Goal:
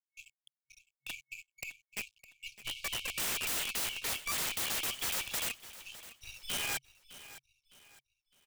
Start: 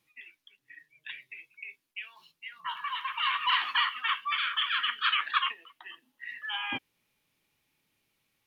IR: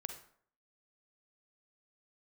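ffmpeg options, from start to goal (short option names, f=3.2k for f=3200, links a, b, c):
-filter_complex "[0:a]highpass=89,aemphasis=mode=reproduction:type=50kf,aeval=exprs='0.2*(cos(1*acos(clip(val(0)/0.2,-1,1)))-cos(1*PI/2))+0.0126*(cos(4*acos(clip(val(0)/0.2,-1,1)))-cos(4*PI/2))+0.00126*(cos(6*acos(clip(val(0)/0.2,-1,1)))-cos(6*PI/2))+0.00631*(cos(7*acos(clip(val(0)/0.2,-1,1)))-cos(7*PI/2))+0.01*(cos(8*acos(clip(val(0)/0.2,-1,1)))-cos(8*PI/2))':c=same,highshelf=f=4.7k:g=-4,acrossover=split=180[a][b];[a]acompressor=threshold=-57dB:ratio=6[c];[c][b]amix=inputs=2:normalize=0,aeval=exprs='sgn(val(0))*max(abs(val(0))-0.002,0)':c=same,afftfilt=real='re*(1-between(b*sr/4096,130,2200))':imag='im*(1-between(b*sr/4096,130,2200))':win_size=4096:overlap=0.75,aeval=exprs='(mod(79.4*val(0)+1,2)-1)/79.4':c=same,asplit=2[d][e];[e]aecho=0:1:609|1218|1827:0.158|0.0555|0.0194[f];[d][f]amix=inputs=2:normalize=0,volume=9dB"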